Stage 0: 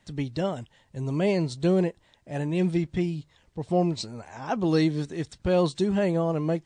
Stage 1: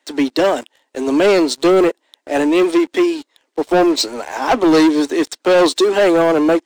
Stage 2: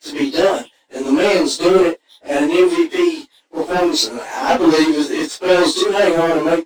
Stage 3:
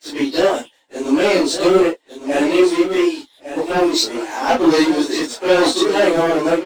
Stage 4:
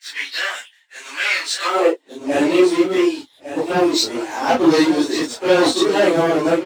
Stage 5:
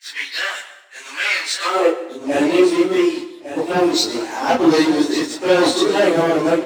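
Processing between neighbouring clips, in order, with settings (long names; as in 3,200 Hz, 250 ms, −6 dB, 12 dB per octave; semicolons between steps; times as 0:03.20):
Butterworth high-pass 260 Hz 72 dB per octave; leveller curve on the samples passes 3; level +7 dB
random phases in long frames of 100 ms; parametric band 5,200 Hz +3 dB 2.7 octaves; level −1 dB
single-tap delay 1,156 ms −10.5 dB; level −1 dB
high-pass filter sweep 1,800 Hz → 100 Hz, 0:01.58–0:02.24; level −1 dB
dense smooth reverb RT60 0.92 s, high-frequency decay 0.75×, pre-delay 90 ms, DRR 13 dB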